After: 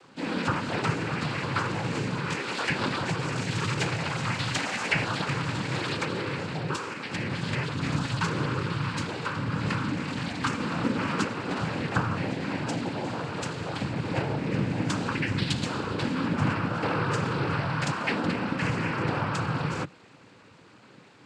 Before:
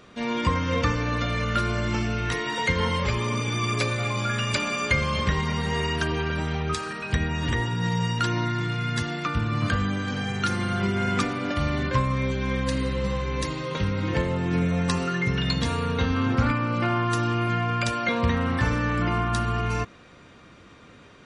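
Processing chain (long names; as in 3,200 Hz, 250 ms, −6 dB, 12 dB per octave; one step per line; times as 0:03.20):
cochlear-implant simulation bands 8
level −2.5 dB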